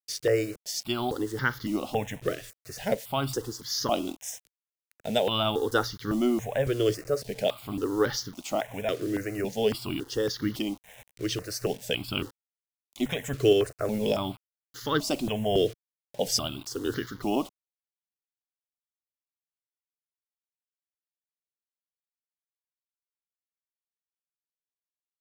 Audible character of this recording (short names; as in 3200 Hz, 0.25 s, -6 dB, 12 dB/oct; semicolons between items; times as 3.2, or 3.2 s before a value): a quantiser's noise floor 8-bit, dither none; tremolo saw up 1.7 Hz, depth 30%; notches that jump at a steady rate 3.6 Hz 230–2500 Hz